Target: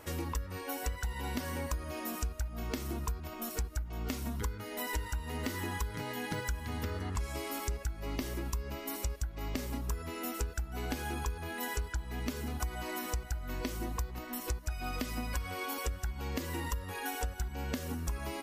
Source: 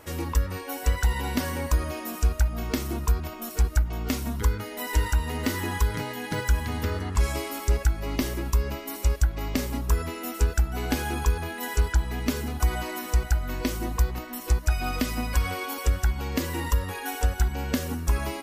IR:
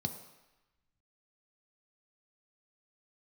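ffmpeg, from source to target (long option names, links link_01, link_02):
-af "acompressor=threshold=-31dB:ratio=4,volume=-2.5dB"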